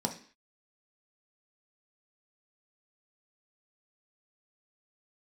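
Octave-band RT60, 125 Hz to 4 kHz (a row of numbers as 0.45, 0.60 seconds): 0.35 s, 0.45 s, 0.45 s, 0.45 s, 0.55 s, can't be measured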